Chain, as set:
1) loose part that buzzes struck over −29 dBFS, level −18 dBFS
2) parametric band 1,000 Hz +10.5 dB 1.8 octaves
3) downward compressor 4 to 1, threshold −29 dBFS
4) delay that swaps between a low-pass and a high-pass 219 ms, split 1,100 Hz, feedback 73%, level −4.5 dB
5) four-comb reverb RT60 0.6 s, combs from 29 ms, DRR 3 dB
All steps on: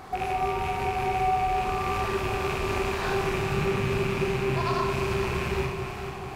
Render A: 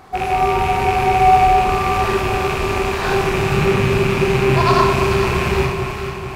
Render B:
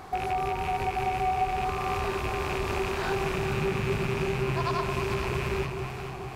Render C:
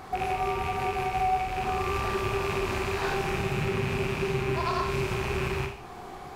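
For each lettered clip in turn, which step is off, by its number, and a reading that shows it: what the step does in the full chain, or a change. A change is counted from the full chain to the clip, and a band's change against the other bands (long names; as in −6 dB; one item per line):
3, average gain reduction 9.0 dB
5, change in integrated loudness −2.0 LU
4, echo-to-direct ratio 0.0 dB to −3.0 dB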